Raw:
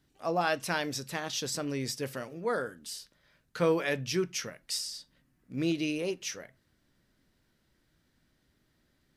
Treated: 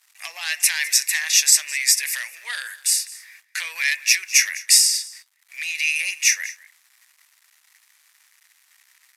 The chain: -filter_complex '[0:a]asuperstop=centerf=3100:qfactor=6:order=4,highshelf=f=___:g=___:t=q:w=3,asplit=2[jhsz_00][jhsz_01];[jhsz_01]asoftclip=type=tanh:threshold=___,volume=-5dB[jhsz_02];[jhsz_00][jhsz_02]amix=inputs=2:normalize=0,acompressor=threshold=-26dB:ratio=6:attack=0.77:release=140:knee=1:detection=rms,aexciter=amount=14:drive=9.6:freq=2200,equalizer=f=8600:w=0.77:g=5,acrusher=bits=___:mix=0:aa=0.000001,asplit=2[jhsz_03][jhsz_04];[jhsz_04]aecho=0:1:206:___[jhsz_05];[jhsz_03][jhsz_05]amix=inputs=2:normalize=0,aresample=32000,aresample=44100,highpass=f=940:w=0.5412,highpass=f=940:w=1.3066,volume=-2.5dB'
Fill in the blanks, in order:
2700, -13, -22.5dB, 7, 0.106